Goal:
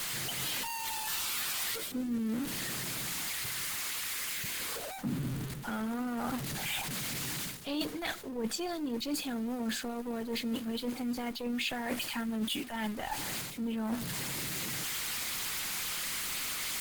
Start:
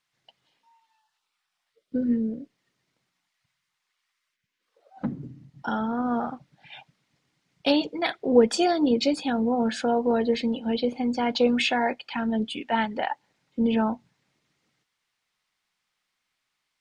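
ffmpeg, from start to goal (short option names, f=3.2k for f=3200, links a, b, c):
-filter_complex "[0:a]aeval=exprs='val(0)+0.5*0.0282*sgn(val(0))':c=same,bandreject=f=5.6k:w=11,areverse,acompressor=threshold=-30dB:ratio=20,areverse,crystalizer=i=1:c=0,acrossover=split=420|1100[a][b][c];[b]aeval=exprs='max(val(0),0)':c=same[d];[a][d][c]amix=inputs=3:normalize=0" -ar 48000 -c:a libopus -b:a 16k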